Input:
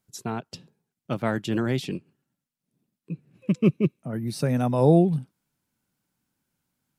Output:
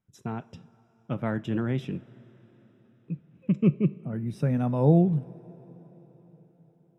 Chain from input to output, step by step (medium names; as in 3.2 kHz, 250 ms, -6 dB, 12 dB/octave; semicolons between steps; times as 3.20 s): Butterworth band-stop 4.4 kHz, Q 5.4; tone controls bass +6 dB, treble -13 dB; two-slope reverb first 0.31 s, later 4.8 s, from -18 dB, DRR 13.5 dB; trim -5.5 dB